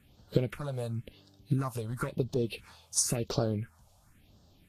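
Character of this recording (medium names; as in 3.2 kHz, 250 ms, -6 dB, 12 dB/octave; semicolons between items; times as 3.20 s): a quantiser's noise floor 12-bit, dither none; phasing stages 4, 0.96 Hz, lowest notch 300–2200 Hz; Vorbis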